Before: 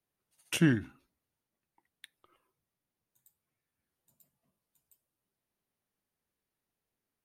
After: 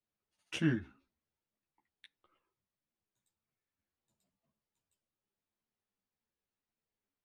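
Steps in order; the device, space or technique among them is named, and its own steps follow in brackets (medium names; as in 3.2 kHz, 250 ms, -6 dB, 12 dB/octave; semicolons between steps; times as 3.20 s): string-machine ensemble chorus (three-phase chorus; low-pass 5.5 kHz 12 dB/octave); trim -2.5 dB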